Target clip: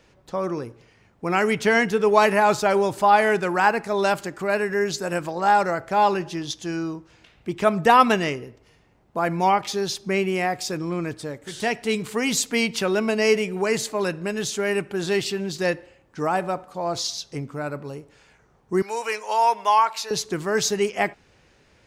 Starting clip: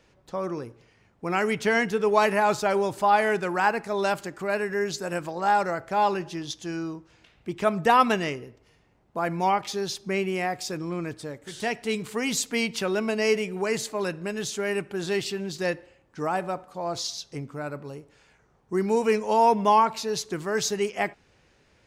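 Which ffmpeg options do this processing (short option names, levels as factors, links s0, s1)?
-filter_complex "[0:a]asettb=1/sr,asplit=3[s0][s1][s2];[s0]atrim=end=18.824[s3];[s1]atrim=start=18.82:end=20.11,asetpts=PTS-STARTPTS,afade=t=in:d=0.004:c=qsin,afade=t=out:st=1.286:d=0.004:c=qsin,highpass=860[s4];[s2]atrim=start=20.106[s5];[s3][s4]acrossfade=d=0.004:c1=hsin:c2=qsin[s6];[s6][s5]acrossfade=d=0.004:c1=qsin:c2=hsin,volume=1.58"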